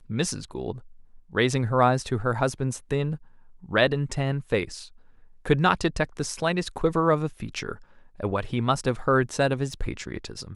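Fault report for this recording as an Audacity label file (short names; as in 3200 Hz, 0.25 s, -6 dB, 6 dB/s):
9.730000	9.730000	gap 2.6 ms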